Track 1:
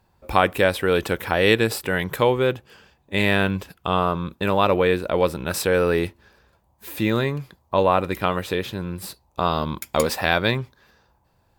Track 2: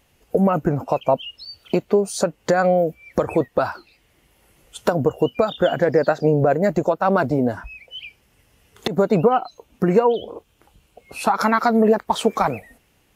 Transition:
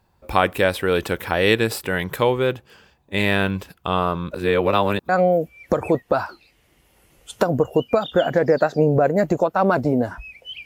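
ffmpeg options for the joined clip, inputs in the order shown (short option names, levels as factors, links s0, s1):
-filter_complex "[0:a]apad=whole_dur=10.65,atrim=end=10.65,asplit=2[s0][s1];[s0]atrim=end=4.312[s2];[s1]atrim=start=4.308:end=5.092,asetpts=PTS-STARTPTS,areverse[s3];[1:a]atrim=start=2.548:end=8.11[s4];[s2][s3]acrossfade=d=0.004:c1=hsin:c2=hsin[s5];[s5][s4]acrossfade=d=0.004:c1=hsin:c2=hsin"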